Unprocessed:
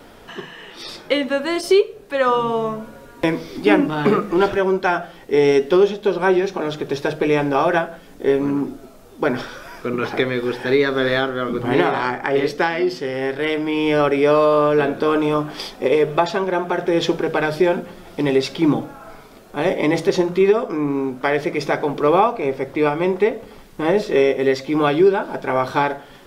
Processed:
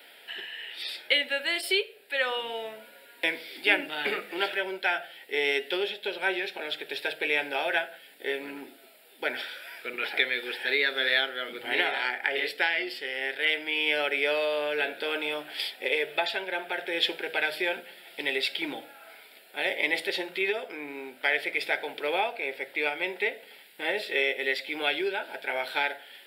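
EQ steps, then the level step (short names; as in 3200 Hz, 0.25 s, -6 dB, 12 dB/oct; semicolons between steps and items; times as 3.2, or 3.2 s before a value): HPF 1100 Hz 12 dB/oct; fixed phaser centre 2700 Hz, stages 4; +2.5 dB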